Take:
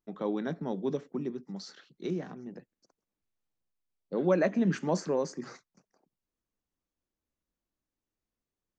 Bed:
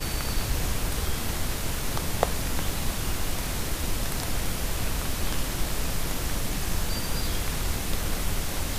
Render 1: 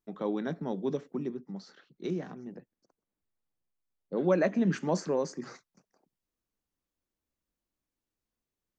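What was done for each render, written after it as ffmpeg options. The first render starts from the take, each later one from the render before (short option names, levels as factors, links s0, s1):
-filter_complex "[0:a]asettb=1/sr,asplit=3[s0][s1][s2];[s0]atrim=end=1.344[s3];[s1]atrim=start=1.34:end=2.04,asetpts=PTS-STARTPTS,afade=t=in:d=0.004:c=qsin,afade=t=out:st=0.696:d=0.004:c=qsin,highshelf=f=3100:g=-12[s4];[s2]atrim=start=2.036[s5];[s3][s4]acrossfade=d=0.004:c1=hsin:c2=qsin[s6];[s6][s5]acrossfade=d=0.004:c1=qsin:c2=hsin,asettb=1/sr,asplit=3[s7][s8][s9];[s7]atrim=end=2.554[s10];[s8]atrim=start=2.55:end=4.17,asetpts=PTS-STARTPTS,afade=t=in:d=0.004:c=qsin,afade=t=out:st=1.616:d=0.004:c=qsin,highshelf=f=2600:g=-9.5[s11];[s9]atrim=start=4.166[s12];[s10][s11]acrossfade=d=0.004:c1=hsin:c2=qsin[s13];[s13][s12]acrossfade=d=0.004:c1=qsin:c2=hsin"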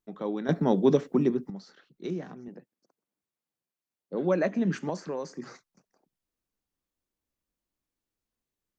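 -filter_complex "[0:a]asettb=1/sr,asplit=3[s0][s1][s2];[s0]atrim=end=2.484[s3];[s1]atrim=start=2.48:end=4.15,asetpts=PTS-STARTPTS,afade=t=in:d=0.004:c=qsin,afade=t=out:st=1.666:d=0.004:c=qsin,highpass=140[s4];[s2]atrim=start=4.146[s5];[s3][s4]acrossfade=d=0.004:c1=hsin:c2=qsin[s6];[s6][s5]acrossfade=d=0.004:c1=qsin:c2=hsin,asettb=1/sr,asplit=3[s7][s8][s9];[s7]atrim=end=4.894[s10];[s8]atrim=start=4.89:end=5.34,asetpts=PTS-STARTPTS,afade=t=in:d=0.004:c=qsin,afade=t=out:st=0.446:d=0.004:c=qsin,acrossover=split=760|4500[s11][s12][s13];[s11]acompressor=threshold=0.0224:ratio=4[s14];[s12]acompressor=threshold=0.0141:ratio=4[s15];[s13]acompressor=threshold=0.002:ratio=4[s16];[s14][s15][s16]amix=inputs=3:normalize=0[s17];[s9]atrim=start=5.336[s18];[s10][s17]acrossfade=d=0.004:c1=hsin:c2=qsin[s19];[s19][s18]acrossfade=d=0.004:c1=qsin:c2=hsin,asplit=3[s20][s21][s22];[s20]atrim=end=0.492[s23];[s21]atrim=start=0.488:end=1.502,asetpts=PTS-STARTPTS,volume=3.35[s24];[s22]atrim=start=1.498[s25];[s23][s24]acrossfade=d=0.004:c1=hsin:c2=hsin[s26];[s26][s25]acrossfade=d=0.004:c1=hsin:c2=hsin"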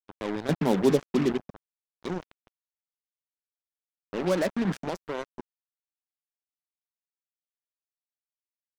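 -af "acrusher=bits=4:mix=0:aa=0.5,aeval=exprs='sgn(val(0))*max(abs(val(0))-0.00355,0)':c=same"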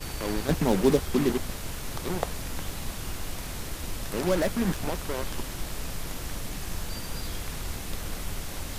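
-filter_complex "[1:a]volume=0.501[s0];[0:a][s0]amix=inputs=2:normalize=0"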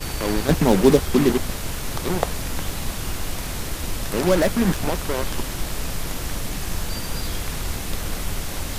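-af "volume=2.24"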